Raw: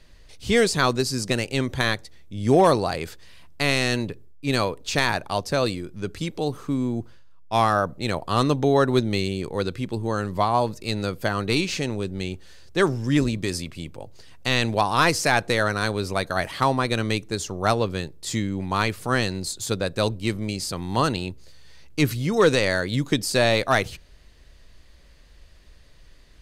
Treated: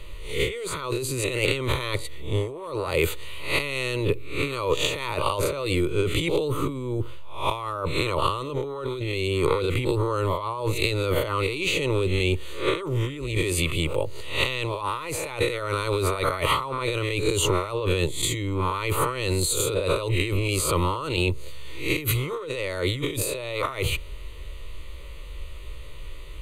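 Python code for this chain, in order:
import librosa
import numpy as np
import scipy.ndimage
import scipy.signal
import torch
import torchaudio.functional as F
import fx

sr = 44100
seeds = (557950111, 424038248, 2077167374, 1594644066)

y = fx.spec_swells(x, sr, rise_s=0.42)
y = fx.over_compress(y, sr, threshold_db=-30.0, ratio=-1.0)
y = fx.fixed_phaser(y, sr, hz=1100.0, stages=8)
y = y * librosa.db_to_amplitude(7.0)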